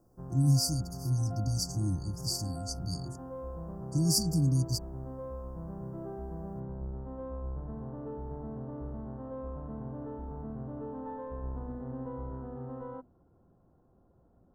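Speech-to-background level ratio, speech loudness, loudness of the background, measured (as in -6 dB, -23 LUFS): 11.0 dB, -30.5 LUFS, -41.5 LUFS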